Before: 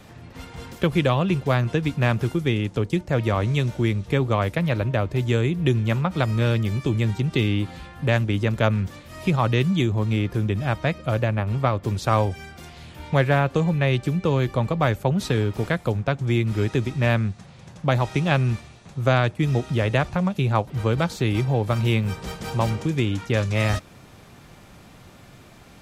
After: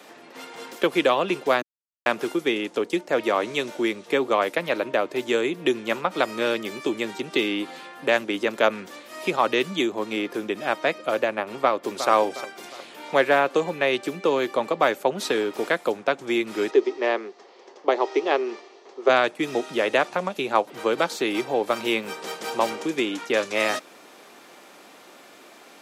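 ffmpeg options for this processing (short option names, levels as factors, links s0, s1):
-filter_complex "[0:a]asplit=2[s0][s1];[s1]afade=t=in:st=11.6:d=0.01,afade=t=out:st=12.08:d=0.01,aecho=0:1:360|720|1080|1440|1800:0.298538|0.134342|0.060454|0.0272043|0.0122419[s2];[s0][s2]amix=inputs=2:normalize=0,asplit=3[s3][s4][s5];[s3]afade=t=out:st=16.7:d=0.02[s6];[s4]highpass=f=310:w=0.5412,highpass=f=310:w=1.3066,equalizer=f=400:t=q:w=4:g=10,equalizer=f=580:t=q:w=4:g=-3,equalizer=f=1500:t=q:w=4:g=-8,equalizer=f=2500:t=q:w=4:g=-7,equalizer=f=3700:t=q:w=4:g=-7,lowpass=f=5300:w=0.5412,lowpass=f=5300:w=1.3066,afade=t=in:st=16.7:d=0.02,afade=t=out:st=19.08:d=0.02[s7];[s5]afade=t=in:st=19.08:d=0.02[s8];[s6][s7][s8]amix=inputs=3:normalize=0,asplit=3[s9][s10][s11];[s9]atrim=end=1.62,asetpts=PTS-STARTPTS,afade=t=out:st=1.616:d=0.004:c=hsin[s12];[s10]atrim=start=1.62:end=2.06,asetpts=PTS-STARTPTS,volume=0[s13];[s11]atrim=start=2.06,asetpts=PTS-STARTPTS,afade=t=in:d=0.004:c=hsin[s14];[s12][s13][s14]concat=n=3:v=0:a=1,highpass=f=300:w=0.5412,highpass=f=300:w=1.3066,volume=1.41"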